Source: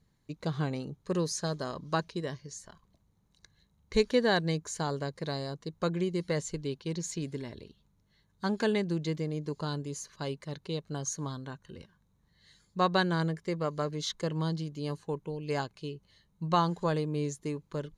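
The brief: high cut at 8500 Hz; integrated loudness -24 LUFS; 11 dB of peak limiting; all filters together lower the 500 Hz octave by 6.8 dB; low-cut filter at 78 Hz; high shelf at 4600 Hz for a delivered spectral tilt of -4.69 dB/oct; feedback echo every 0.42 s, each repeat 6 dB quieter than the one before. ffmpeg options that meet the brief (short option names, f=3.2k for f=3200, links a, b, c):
-af "highpass=78,lowpass=8.5k,equalizer=f=500:t=o:g=-8.5,highshelf=f=4.6k:g=4,alimiter=level_in=2dB:limit=-24dB:level=0:latency=1,volume=-2dB,aecho=1:1:420|840|1260|1680|2100|2520:0.501|0.251|0.125|0.0626|0.0313|0.0157,volume=12.5dB"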